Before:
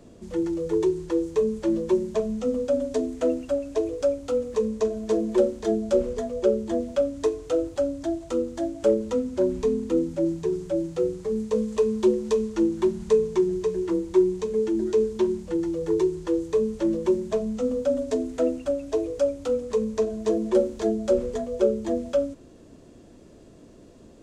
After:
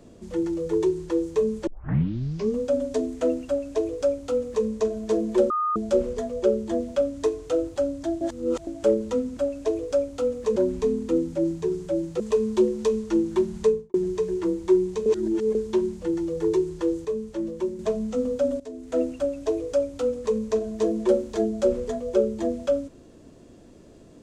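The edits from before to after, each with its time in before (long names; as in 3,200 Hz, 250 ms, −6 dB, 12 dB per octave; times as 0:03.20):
0:01.67: tape start 0.92 s
0:03.47–0:04.66: duplicate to 0:09.37
0:05.50–0:05.76: beep over 1,230 Hz −21.5 dBFS
0:08.21–0:08.67: reverse
0:11.01–0:11.66: remove
0:13.09–0:13.40: fade out and dull
0:14.52–0:15.01: reverse
0:16.51–0:17.25: clip gain −5.5 dB
0:18.06–0:18.46: fade in quadratic, from −14.5 dB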